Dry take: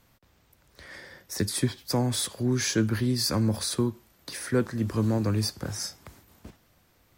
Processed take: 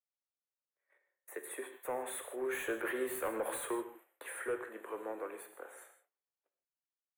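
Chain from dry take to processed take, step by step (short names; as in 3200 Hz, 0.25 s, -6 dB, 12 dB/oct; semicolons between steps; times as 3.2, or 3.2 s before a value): Doppler pass-by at 3.3, 10 m/s, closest 4.2 m; gate -56 dBFS, range -31 dB; steep high-pass 400 Hz 36 dB/oct; high shelf 5000 Hz -5 dB; compressor, threshold -34 dBFS, peak gain reduction 8 dB; soft clip -36.5 dBFS, distortion -12 dB; Butterworth band-stop 5100 Hz, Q 0.74; non-linear reverb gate 0.18 s flat, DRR 7.5 dB; gain +6.5 dB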